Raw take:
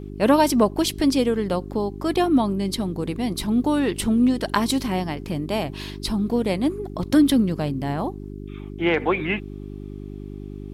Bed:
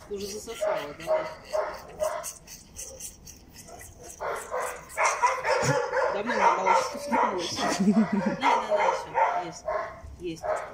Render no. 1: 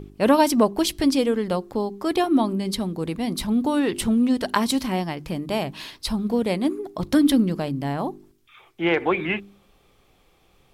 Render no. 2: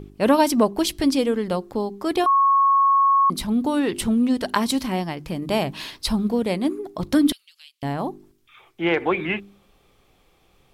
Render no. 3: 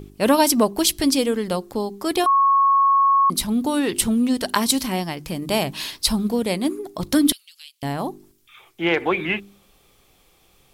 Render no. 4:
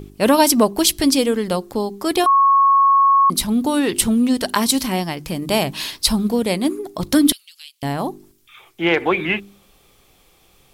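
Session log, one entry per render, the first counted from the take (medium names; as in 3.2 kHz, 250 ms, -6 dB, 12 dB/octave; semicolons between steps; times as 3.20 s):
de-hum 50 Hz, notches 8
2.26–3.30 s: bleep 1.1 kHz -13.5 dBFS; 5.42–6.29 s: gain +3 dB; 7.32–7.83 s: ladder high-pass 2.6 kHz, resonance 45%
treble shelf 4.3 kHz +11.5 dB
trim +3 dB; peak limiter -2 dBFS, peak gain reduction 3 dB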